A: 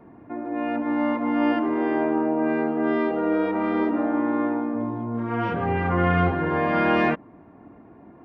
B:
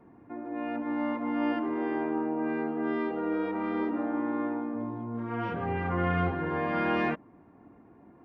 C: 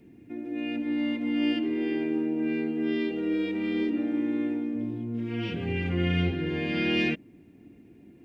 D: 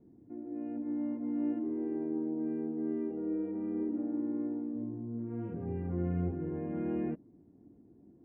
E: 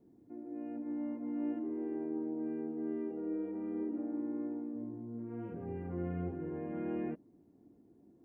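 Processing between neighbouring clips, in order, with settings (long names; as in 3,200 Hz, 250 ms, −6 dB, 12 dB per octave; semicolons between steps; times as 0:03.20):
notch filter 640 Hz, Q 12; level −7 dB
drawn EQ curve 350 Hz 0 dB, 1,100 Hz −22 dB, 2,600 Hz +9 dB; level +3.5 dB
low-pass filter 1,100 Hz 24 dB per octave; level −6.5 dB
low-shelf EQ 290 Hz −9 dB; level +1 dB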